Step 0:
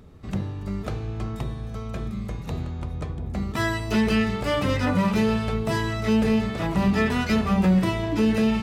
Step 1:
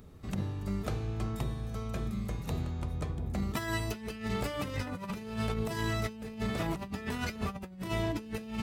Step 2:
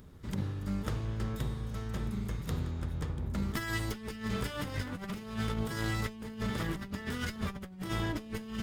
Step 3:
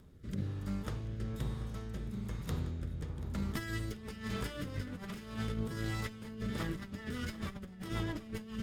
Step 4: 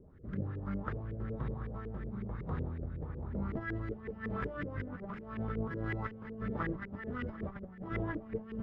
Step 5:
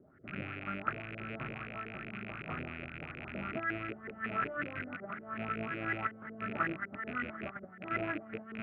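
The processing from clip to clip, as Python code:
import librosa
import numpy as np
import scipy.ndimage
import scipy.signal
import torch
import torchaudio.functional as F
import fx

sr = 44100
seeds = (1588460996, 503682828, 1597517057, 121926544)

y1 = fx.high_shelf(x, sr, hz=8300.0, db=11.0)
y1 = fx.over_compress(y1, sr, threshold_db=-26.0, ratio=-0.5)
y1 = y1 * 10.0 ** (-7.5 / 20.0)
y2 = fx.lower_of_two(y1, sr, delay_ms=0.6)
y2 = fx.notch(y2, sr, hz=690.0, q=12.0)
y3 = fx.rotary_switch(y2, sr, hz=1.1, then_hz=7.5, switch_at_s=6.24)
y3 = fx.echo_feedback(y3, sr, ms=736, feedback_pct=56, wet_db=-17.0)
y3 = y3 * 10.0 ** (-2.0 / 20.0)
y4 = fx.filter_lfo_lowpass(y3, sr, shape='saw_up', hz=5.4, low_hz=390.0, high_hz=2100.0, q=3.4)
y4 = y4 * 10.0 ** (-1.0 / 20.0)
y5 = fx.rattle_buzz(y4, sr, strikes_db=-40.0, level_db=-33.0)
y5 = fx.cabinet(y5, sr, low_hz=180.0, low_slope=12, high_hz=2700.0, hz=(190.0, 470.0, 670.0, 970.0, 1400.0, 2000.0), db=(-5, -9, 7, -7, 10, 4))
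y5 = y5 * 10.0 ** (1.0 / 20.0)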